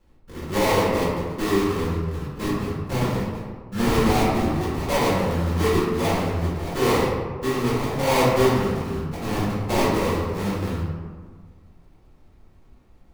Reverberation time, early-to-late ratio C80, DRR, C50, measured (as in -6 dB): 1.6 s, 1.5 dB, -8.5 dB, -1.0 dB